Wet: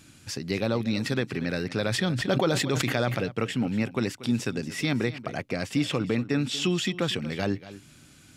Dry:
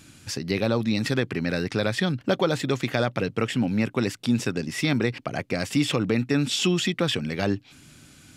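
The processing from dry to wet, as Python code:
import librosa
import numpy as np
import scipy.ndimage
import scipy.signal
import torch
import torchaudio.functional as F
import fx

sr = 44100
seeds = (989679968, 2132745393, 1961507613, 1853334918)

y = fx.high_shelf(x, sr, hz=6400.0, db=-5.5, at=(5.53, 6.66))
y = y + 10.0 ** (-16.0 / 20.0) * np.pad(y, (int(236 * sr / 1000.0), 0))[:len(y)]
y = fx.sustainer(y, sr, db_per_s=28.0, at=(1.9, 3.23), fade=0.02)
y = F.gain(torch.from_numpy(y), -3.0).numpy()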